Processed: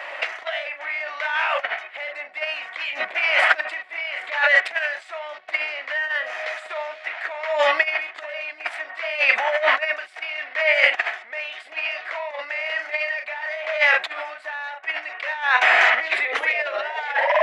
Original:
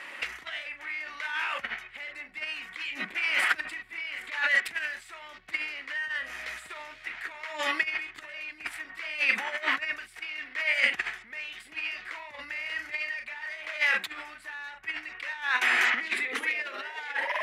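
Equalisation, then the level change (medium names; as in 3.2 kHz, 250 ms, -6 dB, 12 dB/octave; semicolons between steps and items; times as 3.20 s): resonant high-pass 640 Hz, resonance Q 4.9; tape spacing loss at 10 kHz 27 dB; treble shelf 2.9 kHz +11 dB; +8.5 dB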